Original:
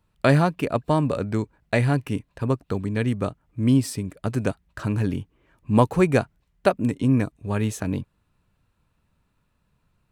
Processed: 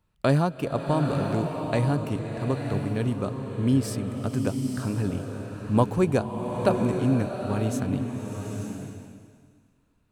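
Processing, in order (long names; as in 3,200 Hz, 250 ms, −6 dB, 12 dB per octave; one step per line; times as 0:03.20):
dynamic equaliser 2,000 Hz, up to −8 dB, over −44 dBFS, Q 1.9
slow-attack reverb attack 920 ms, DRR 3.5 dB
level −3.5 dB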